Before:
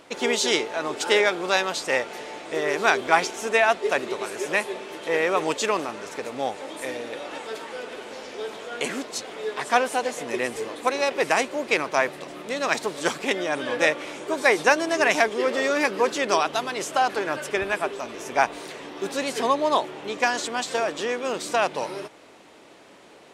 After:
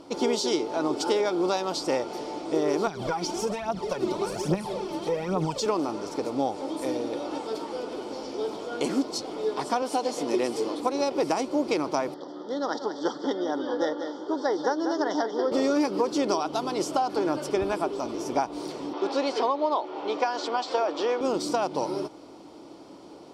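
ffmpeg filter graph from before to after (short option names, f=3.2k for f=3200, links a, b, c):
-filter_complex "[0:a]asettb=1/sr,asplit=3[a][b][c];[a]atrim=end=2.874[d];[b]atrim=start=2.87:end=5.66,asetpts=PTS-STARTPTS,afade=t=in:d=0.004:c=qsin,afade=t=out:st=2.786:d=0.004:c=qsin,lowshelf=f=230:t=q:w=3:g=6,acompressor=threshold=-26dB:ratio=12:attack=3.2:release=140:knee=1:detection=peak,aphaser=in_gain=1:out_gain=1:delay=3.5:decay=0.61:speed=1.2:type=triangular[e];[c]atrim=start=5.656[f];[d][e]acrossfade=d=0.004:c1=hsin:c2=qsin[g];[g][f]acrossfade=d=0.004:c1=qsin:c2=hsin,asettb=1/sr,asplit=3[h][i][j];[h]atrim=end=9.824[k];[i]atrim=start=9.82:end=10.8,asetpts=PTS-STARTPTS,afade=t=in:d=0.004:c=qsin,afade=t=out:st=0.976:d=0.004:c=qsin,highpass=170,equalizer=f=4k:t=o:w=2.3:g=3.5[l];[j]atrim=start=10.796[m];[k][l]acrossfade=d=0.004:c1=hsin:c2=qsin[n];[n][m]acrossfade=d=0.004:c1=qsin:c2=hsin,asettb=1/sr,asplit=3[o][p][q];[o]atrim=end=12.144[r];[p]atrim=start=12.14:end=15.52,asetpts=PTS-STARTPTS,afade=t=in:d=0.004:c=qsin,afade=t=out:st=3.376:d=0.004:c=qsin,asuperstop=centerf=2500:order=8:qfactor=1.9,highpass=340,equalizer=f=360:t=q:w=4:g=-5,equalizer=f=650:t=q:w=4:g=-7,equalizer=f=1.1k:t=q:w=4:g=-6,equalizer=f=2.8k:t=q:w=4:g=5,equalizer=f=4.1k:t=q:w=4:g=-8,lowpass=f=4.7k:w=0.5412,lowpass=f=4.7k:w=1.3066,aecho=1:1:187:0.282,atrim=end_sample=149058[s];[q]atrim=start=15.516[t];[r][s]acrossfade=d=0.004:c1=hsin:c2=qsin[u];[u][t]acrossfade=d=0.004:c1=qsin:c2=hsin,asettb=1/sr,asplit=3[v][w][x];[v]atrim=end=18.934[y];[w]atrim=start=18.93:end=21.21,asetpts=PTS-STARTPTS,afade=t=in:d=0.004:c=qsin,afade=t=out:st=2.276:d=0.004:c=qsin,acontrast=35,highpass=530,lowpass=3.5k[z];[x]atrim=start=21.206[aa];[y][z]acrossfade=d=0.004:c1=hsin:c2=qsin[ab];[ab][aa]acrossfade=d=0.004:c1=qsin:c2=hsin,superequalizer=6b=2:9b=1.41:11b=0.355:12b=0.562:14b=2.24,acompressor=threshold=-22dB:ratio=6,tiltshelf=f=750:g=5"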